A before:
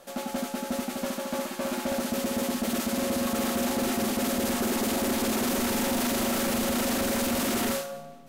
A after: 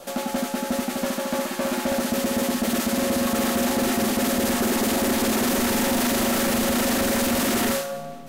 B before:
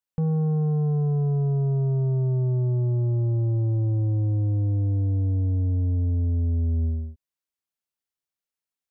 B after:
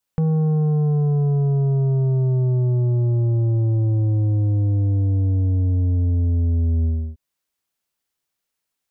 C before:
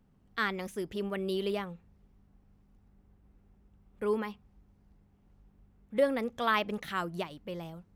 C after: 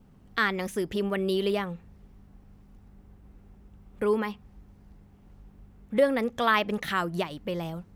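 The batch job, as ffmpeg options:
-filter_complex "[0:a]adynamicequalizer=threshold=0.00282:dfrequency=1800:dqfactor=7.1:tfrequency=1800:tqfactor=7.1:attack=5:release=100:ratio=0.375:range=1.5:mode=boostabove:tftype=bell,asplit=2[link_01][link_02];[link_02]acompressor=threshold=-40dB:ratio=6,volume=3dB[link_03];[link_01][link_03]amix=inputs=2:normalize=0,volume=2.5dB"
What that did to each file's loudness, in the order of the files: +5.0, +4.5, +5.5 LU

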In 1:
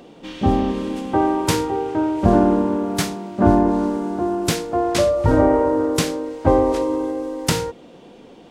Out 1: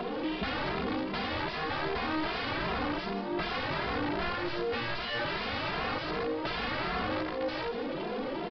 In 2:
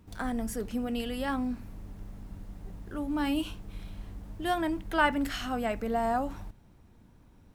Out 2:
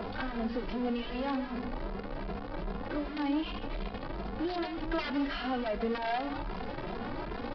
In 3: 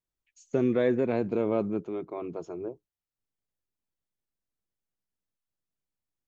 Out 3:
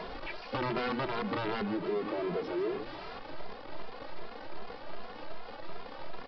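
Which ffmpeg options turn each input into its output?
-filter_complex "[0:a]aeval=exprs='val(0)+0.5*0.0447*sgn(val(0))':channel_layout=same,acrossover=split=430|1100[link_01][link_02][link_03];[link_01]equalizer=frequency=80:width=0.89:gain=-11.5[link_04];[link_02]acompressor=mode=upward:threshold=-32dB:ratio=2.5[link_05];[link_04][link_05][link_03]amix=inputs=3:normalize=0,aeval=exprs='(mod(7.94*val(0)+1,2)-1)/7.94':channel_layout=same,acompressor=threshold=-26dB:ratio=6,highshelf=frequency=3400:gain=-9,aecho=1:1:155:0.299,aresample=11025,aresample=44100,asplit=2[link_06][link_07];[link_07]adelay=2.5,afreqshift=2.6[link_08];[link_06][link_08]amix=inputs=2:normalize=1"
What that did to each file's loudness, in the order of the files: −13.0, −4.0, −8.0 LU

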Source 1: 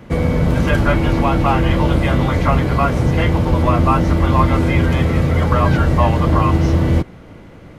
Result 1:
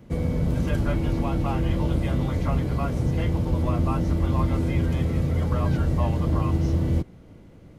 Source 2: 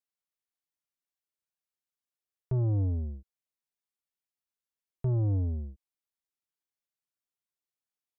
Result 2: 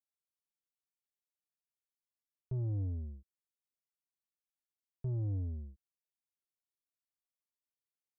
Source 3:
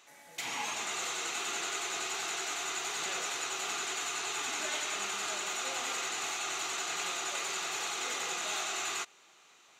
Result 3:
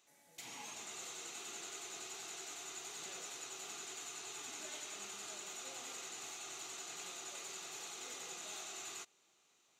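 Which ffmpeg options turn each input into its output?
-af "equalizer=frequency=1500:width=0.44:gain=-9,volume=-7.5dB"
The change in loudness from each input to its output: −9.0, −8.0, −11.5 LU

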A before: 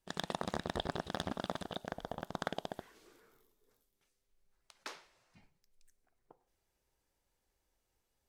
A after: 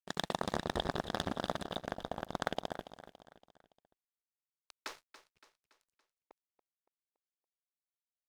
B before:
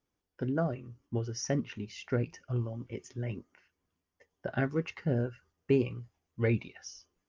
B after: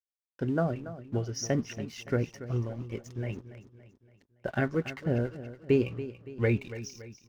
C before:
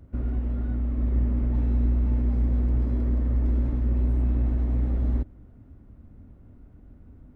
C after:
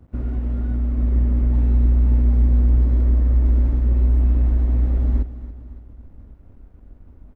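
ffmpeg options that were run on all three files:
-af "aeval=exprs='sgn(val(0))*max(abs(val(0))-0.00158,0)':channel_layout=same,aecho=1:1:283|566|849|1132:0.2|0.0938|0.0441|0.0207,asubboost=boost=2.5:cutoff=67,volume=3dB"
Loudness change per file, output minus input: +2.5, +2.0, +6.5 LU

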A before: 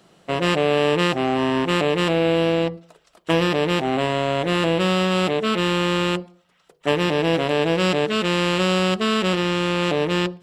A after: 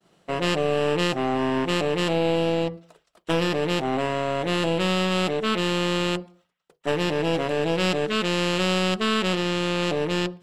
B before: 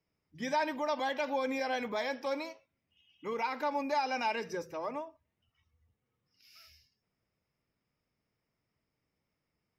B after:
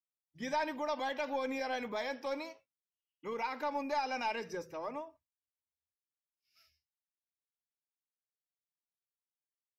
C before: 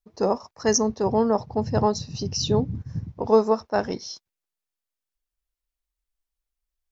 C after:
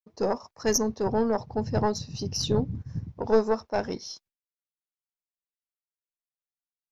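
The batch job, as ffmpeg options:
-af "agate=range=-33dB:threshold=-50dB:ratio=3:detection=peak,aeval=exprs='(tanh(2.82*val(0)+0.6)-tanh(0.6))/2.82':channel_layout=same"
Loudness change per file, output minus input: −3.5, −3.0, −4.0 LU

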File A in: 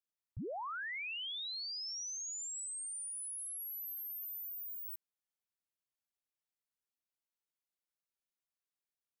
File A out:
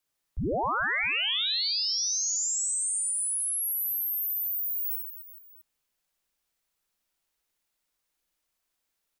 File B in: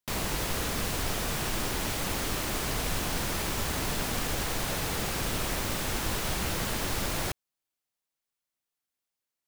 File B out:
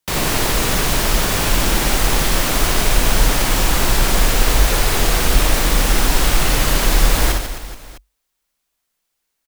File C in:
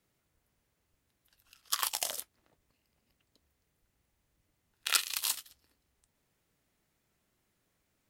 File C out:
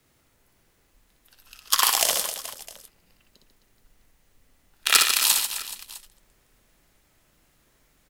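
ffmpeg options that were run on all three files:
-af "asubboost=boost=2.5:cutoff=73,afreqshift=-49,aeval=exprs='0.501*sin(PI/2*1.78*val(0)/0.501)':channel_layout=same,aecho=1:1:60|144|261.6|426.2|656.7:0.631|0.398|0.251|0.158|0.1,volume=2.5dB"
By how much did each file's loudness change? +13.5, +13.5, +11.5 LU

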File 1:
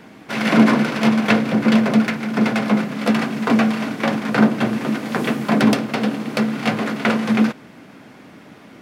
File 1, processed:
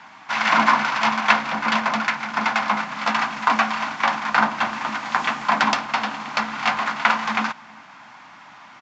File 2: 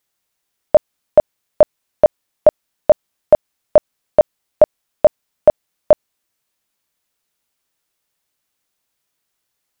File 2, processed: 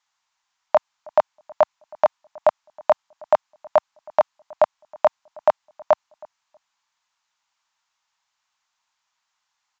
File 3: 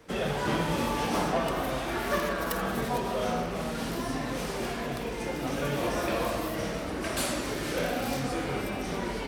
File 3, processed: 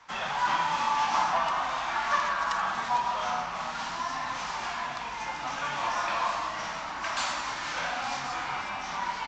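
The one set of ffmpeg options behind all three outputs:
-filter_complex "[0:a]lowshelf=frequency=640:width_type=q:width=3:gain=-13,acrossover=split=130|4900[link_01][link_02][link_03];[link_01]aeval=exprs='(mod(335*val(0)+1,2)-1)/335':channel_layout=same[link_04];[link_04][link_02][link_03]amix=inputs=3:normalize=0,asplit=2[link_05][link_06];[link_06]adelay=319,lowpass=frequency=960:poles=1,volume=-23.5dB,asplit=2[link_07][link_08];[link_08]adelay=319,lowpass=frequency=960:poles=1,volume=0.21[link_09];[link_05][link_07][link_09]amix=inputs=3:normalize=0,aresample=16000,aresample=44100,volume=1dB"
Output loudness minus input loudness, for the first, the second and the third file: −2.5, −7.0, +1.0 LU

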